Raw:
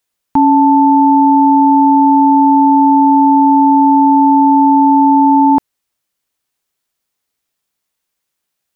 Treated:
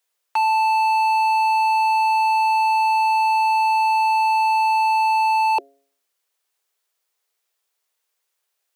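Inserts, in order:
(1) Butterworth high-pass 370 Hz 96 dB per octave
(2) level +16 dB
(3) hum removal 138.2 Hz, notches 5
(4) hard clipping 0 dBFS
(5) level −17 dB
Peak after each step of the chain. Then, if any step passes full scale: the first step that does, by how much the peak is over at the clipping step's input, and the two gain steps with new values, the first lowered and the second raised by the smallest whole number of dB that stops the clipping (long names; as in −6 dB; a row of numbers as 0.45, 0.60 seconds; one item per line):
−7.5, +8.5, +8.5, 0.0, −17.0 dBFS
step 2, 8.5 dB
step 2 +7 dB, step 5 −8 dB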